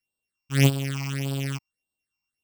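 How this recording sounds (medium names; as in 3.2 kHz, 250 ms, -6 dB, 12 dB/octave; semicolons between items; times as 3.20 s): a buzz of ramps at a fixed pitch in blocks of 16 samples; phasing stages 8, 1.7 Hz, lowest notch 470–2000 Hz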